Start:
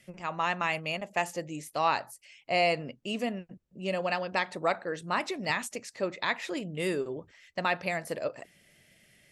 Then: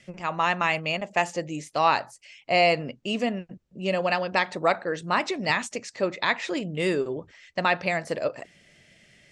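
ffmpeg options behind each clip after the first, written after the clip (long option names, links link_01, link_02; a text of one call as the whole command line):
ffmpeg -i in.wav -af "lowpass=frequency=7800:width=0.5412,lowpass=frequency=7800:width=1.3066,volume=5.5dB" out.wav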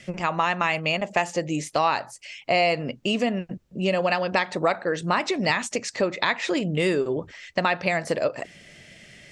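ffmpeg -i in.wav -af "acompressor=threshold=-31dB:ratio=2.5,volume=8.5dB" out.wav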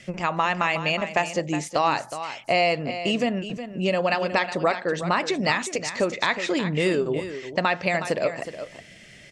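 ffmpeg -i in.wav -af "aecho=1:1:366:0.282" out.wav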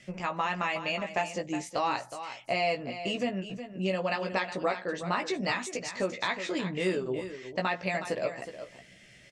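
ffmpeg -i in.wav -filter_complex "[0:a]asplit=2[link_01][link_02];[link_02]adelay=16,volume=-5dB[link_03];[link_01][link_03]amix=inputs=2:normalize=0,volume=-8.5dB" out.wav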